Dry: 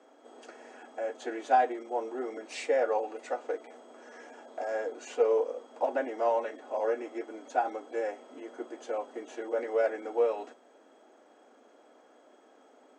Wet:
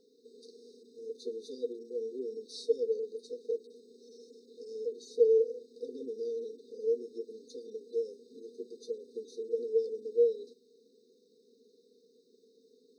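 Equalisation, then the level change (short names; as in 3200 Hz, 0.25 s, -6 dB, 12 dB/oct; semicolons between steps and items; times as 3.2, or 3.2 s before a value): dynamic EQ 3900 Hz, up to -5 dB, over -56 dBFS, Q 1.3; brick-wall FIR band-stop 490–3600 Hz; fixed phaser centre 1600 Hz, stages 8; +7.5 dB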